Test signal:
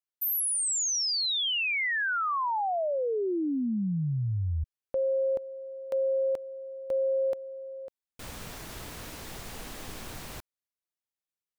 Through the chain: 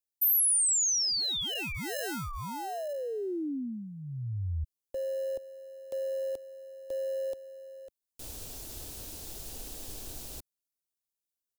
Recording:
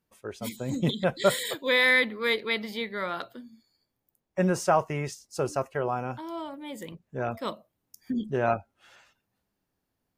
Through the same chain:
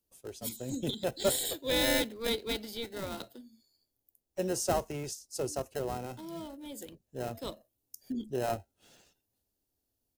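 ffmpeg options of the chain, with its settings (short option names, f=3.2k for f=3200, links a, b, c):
-filter_complex "[0:a]acrossover=split=230|990|2600[a][b][c][d];[a]aecho=1:1:2.8:0.86[e];[c]acrusher=samples=38:mix=1:aa=0.000001[f];[e][b][f][d]amix=inputs=4:normalize=0,highshelf=f=4.6k:g=10.5,volume=-5.5dB"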